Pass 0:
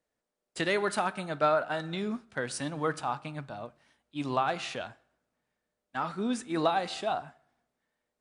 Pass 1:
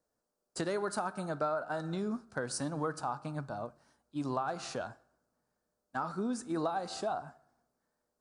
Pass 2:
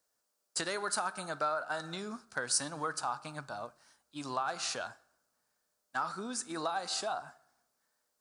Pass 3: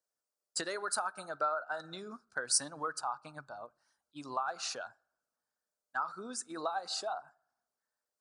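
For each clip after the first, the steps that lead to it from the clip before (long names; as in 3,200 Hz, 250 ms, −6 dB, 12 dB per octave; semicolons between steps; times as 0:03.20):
flat-topped bell 2,600 Hz −12.5 dB 1.2 octaves; downward compressor 3 to 1, threshold −34 dBFS, peak gain reduction 10 dB; level +1.5 dB
tilt shelving filter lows −9 dB, about 870 Hz
spectral envelope exaggerated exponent 1.5; expander for the loud parts 1.5 to 1, over −54 dBFS; level +2 dB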